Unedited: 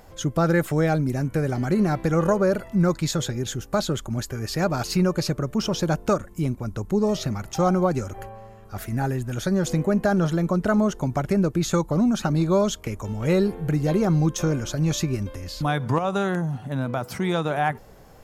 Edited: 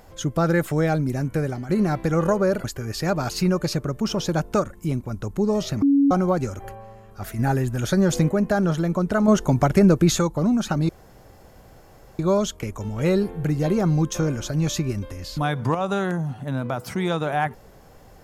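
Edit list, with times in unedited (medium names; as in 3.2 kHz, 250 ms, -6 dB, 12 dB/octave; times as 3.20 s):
1.42–1.69 s: fade out, to -11.5 dB
2.64–4.18 s: delete
7.36–7.65 s: bleep 280 Hz -13.5 dBFS
8.93–9.83 s: gain +3.5 dB
10.82–11.73 s: gain +6 dB
12.43 s: insert room tone 1.30 s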